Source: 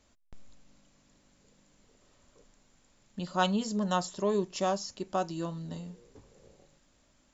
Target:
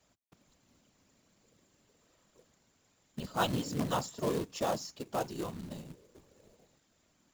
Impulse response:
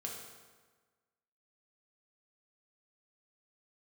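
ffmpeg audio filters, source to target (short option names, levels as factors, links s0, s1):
-filter_complex "[0:a]highpass=67,acrossover=split=120[s0][s1];[s0]acompressor=threshold=0.001:ratio=16[s2];[s2][s1]amix=inputs=2:normalize=0,afftfilt=real='hypot(re,im)*cos(2*PI*random(0))':imag='hypot(re,im)*sin(2*PI*random(1))':win_size=512:overlap=0.75,acrusher=bits=3:mode=log:mix=0:aa=0.000001,volume=1.33"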